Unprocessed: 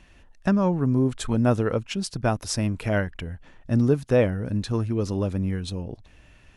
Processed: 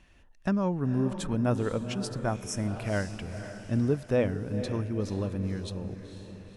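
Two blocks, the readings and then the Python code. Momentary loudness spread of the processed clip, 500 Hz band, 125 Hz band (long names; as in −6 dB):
11 LU, −5.5 dB, −5.5 dB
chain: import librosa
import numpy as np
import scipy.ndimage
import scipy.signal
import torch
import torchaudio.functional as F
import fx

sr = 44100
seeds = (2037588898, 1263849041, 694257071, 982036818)

y = fx.echo_diffused(x, sr, ms=493, feedback_pct=48, wet_db=-10.0)
y = fx.spec_repair(y, sr, seeds[0], start_s=2.28, length_s=0.43, low_hz=2300.0, high_hz=5200.0, source='both')
y = y * 10.0 ** (-6.0 / 20.0)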